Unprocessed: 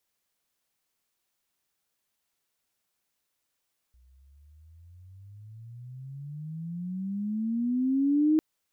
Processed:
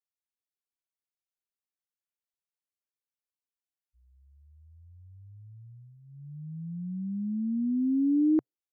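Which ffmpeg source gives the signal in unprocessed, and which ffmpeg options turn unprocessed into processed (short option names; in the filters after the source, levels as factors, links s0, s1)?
-f lavfi -i "aevalsrc='pow(10,(-18.5+38*(t/4.45-1))/20)*sin(2*PI*60.9*4.45/(28.5*log(2)/12)*(exp(28.5*log(2)/12*t/4.45)-1))':d=4.45:s=44100"
-af "afftdn=nr=22:nf=-42,equalizer=f=130:w=7.5:g=-12.5"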